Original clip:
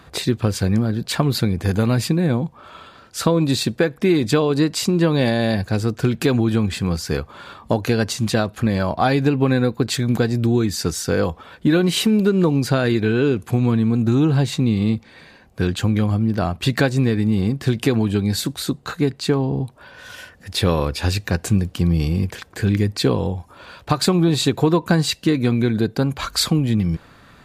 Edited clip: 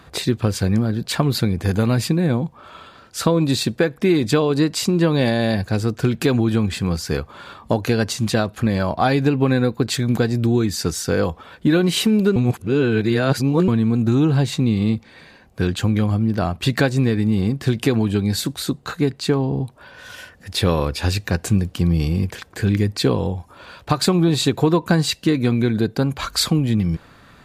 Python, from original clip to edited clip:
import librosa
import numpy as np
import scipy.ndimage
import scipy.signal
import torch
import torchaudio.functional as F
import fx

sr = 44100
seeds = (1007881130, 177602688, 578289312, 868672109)

y = fx.edit(x, sr, fx.reverse_span(start_s=12.36, length_s=1.32), tone=tone)